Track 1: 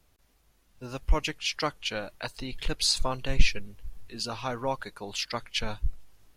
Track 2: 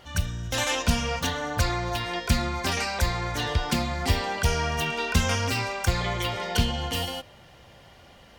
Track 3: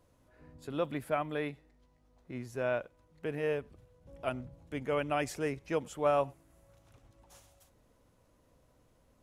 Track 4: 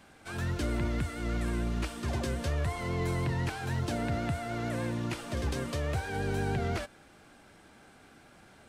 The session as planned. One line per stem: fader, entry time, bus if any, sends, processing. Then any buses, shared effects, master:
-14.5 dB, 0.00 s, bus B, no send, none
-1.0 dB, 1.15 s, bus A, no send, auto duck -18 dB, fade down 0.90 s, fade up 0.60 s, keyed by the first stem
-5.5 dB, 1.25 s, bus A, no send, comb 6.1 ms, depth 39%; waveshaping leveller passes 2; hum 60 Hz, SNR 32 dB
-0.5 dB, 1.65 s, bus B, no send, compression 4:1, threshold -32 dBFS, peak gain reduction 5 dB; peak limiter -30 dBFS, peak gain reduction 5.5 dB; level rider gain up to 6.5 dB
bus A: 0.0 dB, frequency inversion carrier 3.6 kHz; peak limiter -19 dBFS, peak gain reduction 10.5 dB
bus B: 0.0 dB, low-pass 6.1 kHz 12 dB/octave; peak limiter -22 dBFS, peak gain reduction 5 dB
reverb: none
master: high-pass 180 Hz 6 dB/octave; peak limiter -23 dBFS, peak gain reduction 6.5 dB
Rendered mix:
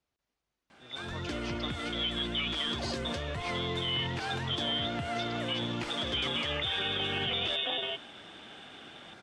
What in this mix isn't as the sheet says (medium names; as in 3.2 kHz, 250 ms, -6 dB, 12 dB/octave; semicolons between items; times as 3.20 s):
stem 2: entry 1.15 s -> 0.75 s; stem 4: entry 1.65 s -> 0.70 s